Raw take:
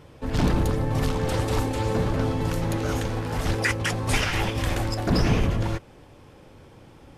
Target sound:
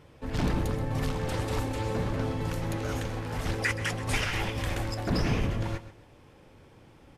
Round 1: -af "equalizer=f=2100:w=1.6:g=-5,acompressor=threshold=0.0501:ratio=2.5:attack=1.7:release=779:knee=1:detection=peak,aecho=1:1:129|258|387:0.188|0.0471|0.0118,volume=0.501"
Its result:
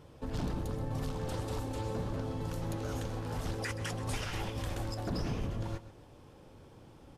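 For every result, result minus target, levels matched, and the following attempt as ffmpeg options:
compression: peak gain reduction +9 dB; 2 kHz band -5.0 dB
-af "equalizer=f=2100:w=1.6:g=-5,aecho=1:1:129|258|387:0.188|0.0471|0.0118,volume=0.501"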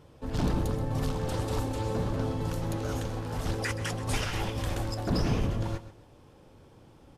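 2 kHz band -5.0 dB
-af "equalizer=f=2100:w=1.6:g=2.5,aecho=1:1:129|258|387:0.188|0.0471|0.0118,volume=0.501"

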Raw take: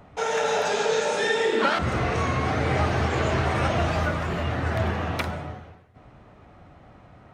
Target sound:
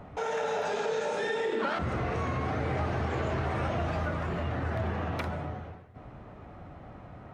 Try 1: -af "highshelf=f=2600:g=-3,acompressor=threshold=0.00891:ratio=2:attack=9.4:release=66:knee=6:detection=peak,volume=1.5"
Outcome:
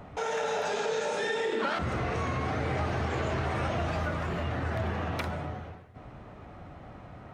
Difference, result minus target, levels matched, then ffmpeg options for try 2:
4 kHz band +3.0 dB
-af "highshelf=f=2600:g=-9,acompressor=threshold=0.00891:ratio=2:attack=9.4:release=66:knee=6:detection=peak,volume=1.5"

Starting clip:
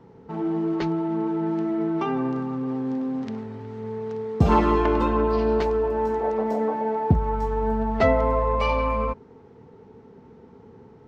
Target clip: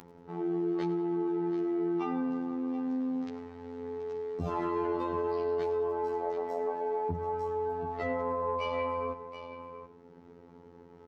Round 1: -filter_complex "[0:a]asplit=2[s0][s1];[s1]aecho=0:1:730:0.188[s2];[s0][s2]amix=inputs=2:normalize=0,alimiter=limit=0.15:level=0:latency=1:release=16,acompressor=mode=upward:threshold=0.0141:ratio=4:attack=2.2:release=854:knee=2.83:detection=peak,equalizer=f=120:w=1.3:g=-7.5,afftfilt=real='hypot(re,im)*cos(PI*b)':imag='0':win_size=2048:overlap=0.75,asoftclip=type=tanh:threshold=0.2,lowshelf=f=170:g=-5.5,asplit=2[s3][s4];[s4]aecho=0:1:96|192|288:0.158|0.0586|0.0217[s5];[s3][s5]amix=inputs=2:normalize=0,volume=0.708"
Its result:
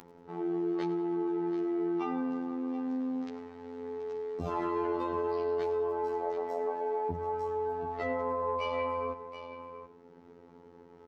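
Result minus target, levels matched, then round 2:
125 Hz band -3.0 dB
-filter_complex "[0:a]asplit=2[s0][s1];[s1]aecho=0:1:730:0.188[s2];[s0][s2]amix=inputs=2:normalize=0,alimiter=limit=0.15:level=0:latency=1:release=16,acompressor=mode=upward:threshold=0.0141:ratio=4:attack=2.2:release=854:knee=2.83:detection=peak,afftfilt=real='hypot(re,im)*cos(PI*b)':imag='0':win_size=2048:overlap=0.75,asoftclip=type=tanh:threshold=0.2,lowshelf=f=170:g=-5.5,asplit=2[s3][s4];[s4]aecho=0:1:96|192|288:0.158|0.0586|0.0217[s5];[s3][s5]amix=inputs=2:normalize=0,volume=0.708"

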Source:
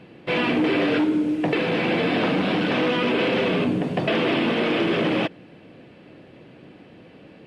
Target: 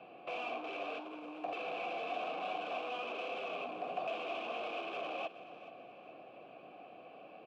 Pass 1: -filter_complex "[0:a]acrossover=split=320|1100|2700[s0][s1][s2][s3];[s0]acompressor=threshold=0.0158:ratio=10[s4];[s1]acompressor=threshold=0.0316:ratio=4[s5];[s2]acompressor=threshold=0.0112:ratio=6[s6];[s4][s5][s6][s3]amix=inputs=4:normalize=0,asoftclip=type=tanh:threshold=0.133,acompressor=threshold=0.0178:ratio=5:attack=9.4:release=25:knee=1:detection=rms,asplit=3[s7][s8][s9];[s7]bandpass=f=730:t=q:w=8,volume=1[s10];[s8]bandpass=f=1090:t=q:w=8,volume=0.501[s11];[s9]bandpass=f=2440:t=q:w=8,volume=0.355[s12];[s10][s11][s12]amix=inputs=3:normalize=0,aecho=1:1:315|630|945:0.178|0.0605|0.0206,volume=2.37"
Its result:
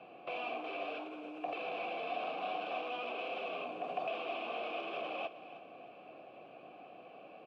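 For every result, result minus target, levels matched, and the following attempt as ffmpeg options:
saturation: distortion -15 dB; echo 110 ms early
-filter_complex "[0:a]acrossover=split=320|1100|2700[s0][s1][s2][s3];[s0]acompressor=threshold=0.0158:ratio=10[s4];[s1]acompressor=threshold=0.0316:ratio=4[s5];[s2]acompressor=threshold=0.0112:ratio=6[s6];[s4][s5][s6][s3]amix=inputs=4:normalize=0,asoftclip=type=tanh:threshold=0.0355,acompressor=threshold=0.0178:ratio=5:attack=9.4:release=25:knee=1:detection=rms,asplit=3[s7][s8][s9];[s7]bandpass=f=730:t=q:w=8,volume=1[s10];[s8]bandpass=f=1090:t=q:w=8,volume=0.501[s11];[s9]bandpass=f=2440:t=q:w=8,volume=0.355[s12];[s10][s11][s12]amix=inputs=3:normalize=0,aecho=1:1:315|630|945:0.178|0.0605|0.0206,volume=2.37"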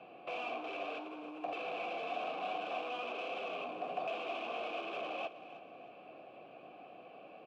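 echo 110 ms early
-filter_complex "[0:a]acrossover=split=320|1100|2700[s0][s1][s2][s3];[s0]acompressor=threshold=0.0158:ratio=10[s4];[s1]acompressor=threshold=0.0316:ratio=4[s5];[s2]acompressor=threshold=0.0112:ratio=6[s6];[s4][s5][s6][s3]amix=inputs=4:normalize=0,asoftclip=type=tanh:threshold=0.0355,acompressor=threshold=0.0178:ratio=5:attack=9.4:release=25:knee=1:detection=rms,asplit=3[s7][s8][s9];[s7]bandpass=f=730:t=q:w=8,volume=1[s10];[s8]bandpass=f=1090:t=q:w=8,volume=0.501[s11];[s9]bandpass=f=2440:t=q:w=8,volume=0.355[s12];[s10][s11][s12]amix=inputs=3:normalize=0,aecho=1:1:425|850|1275:0.178|0.0605|0.0206,volume=2.37"

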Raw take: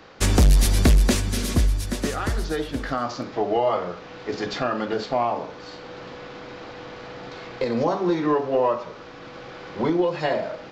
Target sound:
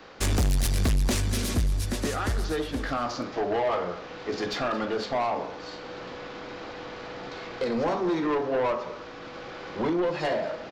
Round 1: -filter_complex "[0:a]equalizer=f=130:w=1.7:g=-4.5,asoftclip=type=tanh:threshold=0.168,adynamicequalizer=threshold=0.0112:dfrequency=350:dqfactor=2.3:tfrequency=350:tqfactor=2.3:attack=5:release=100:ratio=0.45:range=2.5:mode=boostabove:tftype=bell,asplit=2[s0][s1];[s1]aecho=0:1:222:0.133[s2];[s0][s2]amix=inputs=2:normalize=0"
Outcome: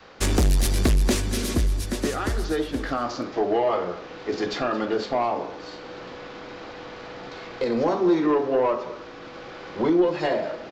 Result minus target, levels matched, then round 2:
saturation: distortion -6 dB; 125 Hz band -3.0 dB
-filter_complex "[0:a]equalizer=f=130:w=1.7:g=-4.5,asoftclip=type=tanh:threshold=0.0841,adynamicequalizer=threshold=0.0112:dfrequency=99:dqfactor=2.3:tfrequency=99:tqfactor=2.3:attack=5:release=100:ratio=0.45:range=2.5:mode=boostabove:tftype=bell,asplit=2[s0][s1];[s1]aecho=0:1:222:0.133[s2];[s0][s2]amix=inputs=2:normalize=0"

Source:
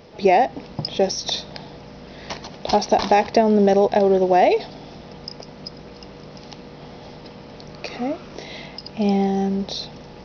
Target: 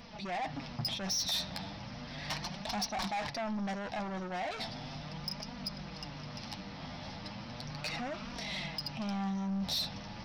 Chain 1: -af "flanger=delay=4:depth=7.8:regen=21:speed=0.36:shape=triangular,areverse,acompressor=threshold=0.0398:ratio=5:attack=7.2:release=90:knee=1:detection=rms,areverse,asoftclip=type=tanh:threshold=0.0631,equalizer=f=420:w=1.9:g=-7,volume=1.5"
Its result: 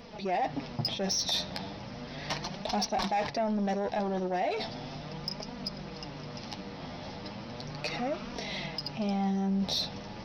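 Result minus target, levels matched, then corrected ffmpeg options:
saturation: distortion -9 dB; 500 Hz band +4.5 dB
-af "flanger=delay=4:depth=7.8:regen=21:speed=0.36:shape=triangular,areverse,acompressor=threshold=0.0398:ratio=5:attack=7.2:release=90:knee=1:detection=rms,areverse,asoftclip=type=tanh:threshold=0.0266,equalizer=f=420:w=1.9:g=-19,volume=1.5"

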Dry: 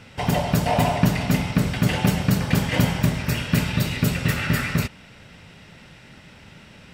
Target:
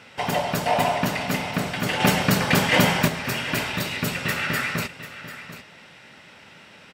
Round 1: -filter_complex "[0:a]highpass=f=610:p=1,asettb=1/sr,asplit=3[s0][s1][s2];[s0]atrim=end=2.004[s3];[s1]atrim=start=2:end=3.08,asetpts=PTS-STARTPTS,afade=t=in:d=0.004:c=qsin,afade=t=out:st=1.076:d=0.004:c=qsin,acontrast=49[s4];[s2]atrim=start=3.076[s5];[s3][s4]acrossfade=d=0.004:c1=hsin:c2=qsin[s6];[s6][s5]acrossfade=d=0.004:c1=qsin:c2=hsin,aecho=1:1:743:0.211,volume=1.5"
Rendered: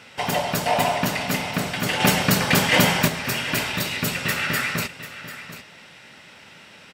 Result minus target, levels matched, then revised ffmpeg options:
8 kHz band +3.0 dB
-filter_complex "[0:a]highpass=f=610:p=1,highshelf=f=3300:g=-5,asettb=1/sr,asplit=3[s0][s1][s2];[s0]atrim=end=2.004[s3];[s1]atrim=start=2:end=3.08,asetpts=PTS-STARTPTS,afade=t=in:d=0.004:c=qsin,afade=t=out:st=1.076:d=0.004:c=qsin,acontrast=49[s4];[s2]atrim=start=3.076[s5];[s3][s4]acrossfade=d=0.004:c1=hsin:c2=qsin[s6];[s6][s5]acrossfade=d=0.004:c1=qsin:c2=hsin,aecho=1:1:743:0.211,volume=1.5"

